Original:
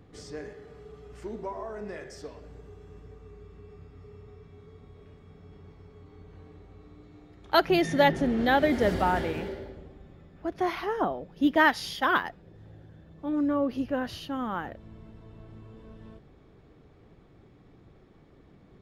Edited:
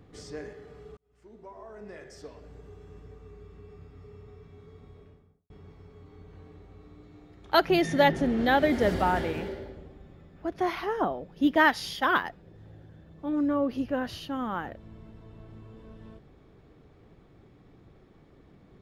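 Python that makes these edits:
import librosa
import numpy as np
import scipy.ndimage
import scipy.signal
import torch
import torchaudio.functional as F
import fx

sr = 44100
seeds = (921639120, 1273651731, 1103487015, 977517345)

y = fx.studio_fade_out(x, sr, start_s=4.89, length_s=0.61)
y = fx.edit(y, sr, fx.fade_in_span(start_s=0.97, length_s=1.77), tone=tone)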